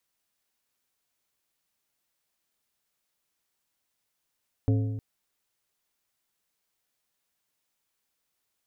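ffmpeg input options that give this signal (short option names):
-f lavfi -i "aevalsrc='0.112*pow(10,-3*t/1.37)*sin(2*PI*108*t)+0.0531*pow(10,-3*t/1.041)*sin(2*PI*270*t)+0.0251*pow(10,-3*t/0.904)*sin(2*PI*432*t)+0.0119*pow(10,-3*t/0.845)*sin(2*PI*540*t)+0.00562*pow(10,-3*t/0.781)*sin(2*PI*702*t)':d=0.31:s=44100"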